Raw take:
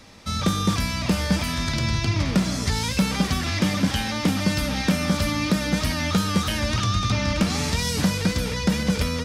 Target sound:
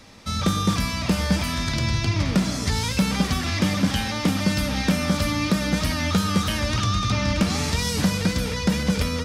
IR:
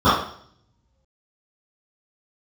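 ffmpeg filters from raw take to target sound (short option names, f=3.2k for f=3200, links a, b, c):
-filter_complex "[0:a]asplit=2[a][b];[1:a]atrim=start_sample=2205,adelay=79[c];[b][c]afir=irnorm=-1:irlink=0,volume=-42dB[d];[a][d]amix=inputs=2:normalize=0"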